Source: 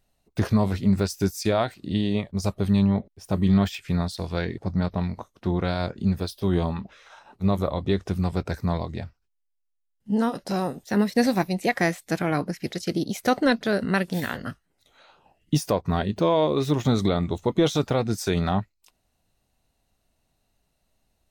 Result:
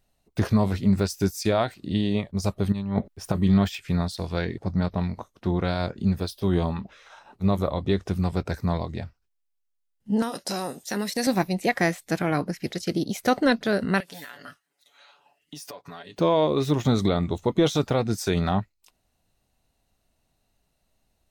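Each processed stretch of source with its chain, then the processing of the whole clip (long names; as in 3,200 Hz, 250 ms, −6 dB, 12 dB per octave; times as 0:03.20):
0:02.72–0:03.35: parametric band 1,400 Hz +4.5 dB 1 octave + compressor whose output falls as the input rises −24 dBFS, ratio −0.5
0:10.22–0:11.27: high-pass filter 260 Hz 6 dB per octave + downward compressor 2.5 to 1, threshold −25 dBFS + parametric band 8,600 Hz +11 dB 2.2 octaves
0:14.00–0:16.19: high-pass filter 1,100 Hz 6 dB per octave + comb filter 7 ms, depth 90% + downward compressor, threshold −37 dBFS
whole clip: no processing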